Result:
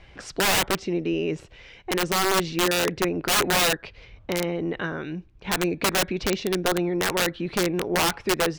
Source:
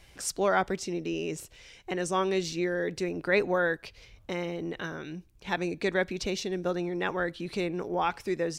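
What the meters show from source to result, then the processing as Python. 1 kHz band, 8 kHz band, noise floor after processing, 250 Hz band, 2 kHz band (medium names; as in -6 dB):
+5.5 dB, +11.5 dB, -51 dBFS, +5.5 dB, +6.0 dB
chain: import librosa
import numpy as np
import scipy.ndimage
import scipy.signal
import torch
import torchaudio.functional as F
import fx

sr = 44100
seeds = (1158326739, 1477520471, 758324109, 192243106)

y = scipy.signal.sosfilt(scipy.signal.butter(2, 2900.0, 'lowpass', fs=sr, output='sos'), x)
y = (np.mod(10.0 ** (22.5 / 20.0) * y + 1.0, 2.0) - 1.0) / 10.0 ** (22.5 / 20.0)
y = y * librosa.db_to_amplitude(7.0)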